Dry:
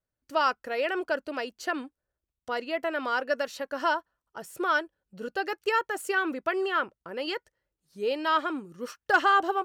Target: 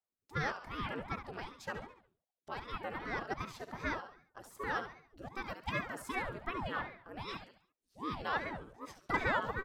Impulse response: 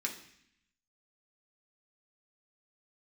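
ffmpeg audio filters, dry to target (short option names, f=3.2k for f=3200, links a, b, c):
-filter_complex "[0:a]aecho=1:1:70|140|210|280|350:0.335|0.147|0.0648|0.0285|0.0126,asplit=2[a][b];[b]asetrate=29433,aresample=44100,atempo=1.49831,volume=-9dB[c];[a][c]amix=inputs=2:normalize=0,aeval=exprs='val(0)*sin(2*PI*430*n/s+430*0.8/2.6*sin(2*PI*2.6*n/s))':c=same,volume=-9dB"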